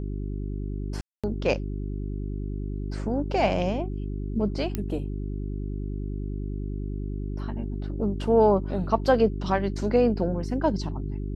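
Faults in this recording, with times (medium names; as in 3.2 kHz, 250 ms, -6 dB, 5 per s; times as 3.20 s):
hum 50 Hz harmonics 8 -31 dBFS
1.01–1.24 s: dropout 226 ms
4.75 s: pop -14 dBFS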